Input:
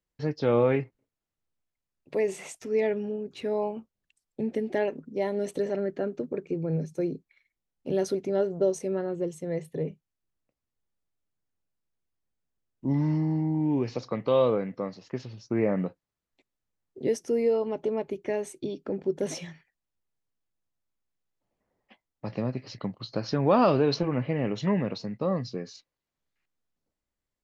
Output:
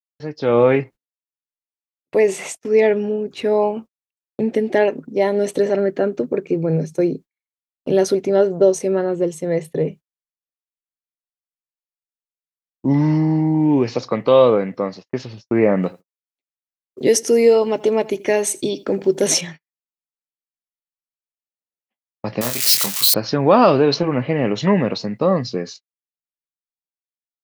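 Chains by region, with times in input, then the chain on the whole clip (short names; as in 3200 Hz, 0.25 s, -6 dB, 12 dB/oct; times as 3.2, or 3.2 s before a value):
15.83–19.41 high shelf 3100 Hz +12 dB + feedback echo 82 ms, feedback 24%, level -21 dB
22.41–23.14 switching spikes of -27 dBFS + tilt shelf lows -9.5 dB, about 900 Hz + doubler 25 ms -6 dB
whole clip: gate -44 dBFS, range -41 dB; low shelf 160 Hz -8 dB; AGC gain up to 11.5 dB; gain +1 dB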